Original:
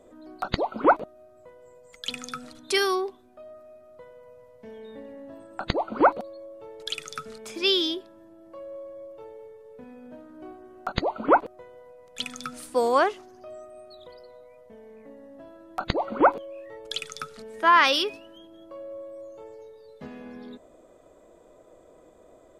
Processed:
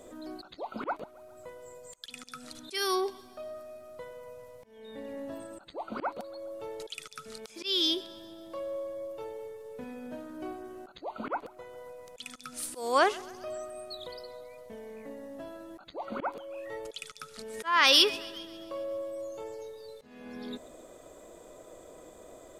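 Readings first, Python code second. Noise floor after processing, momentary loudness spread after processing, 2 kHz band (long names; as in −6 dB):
−54 dBFS, 21 LU, −5.0 dB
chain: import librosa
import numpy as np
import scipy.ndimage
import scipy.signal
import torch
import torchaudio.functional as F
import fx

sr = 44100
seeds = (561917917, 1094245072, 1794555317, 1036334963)

p1 = fx.high_shelf(x, sr, hz=3000.0, db=10.5)
p2 = fx.auto_swell(p1, sr, attack_ms=546.0)
p3 = p2 + fx.echo_thinned(p2, sr, ms=135, feedback_pct=61, hz=420.0, wet_db=-21.5, dry=0)
y = p3 * librosa.db_to_amplitude(3.0)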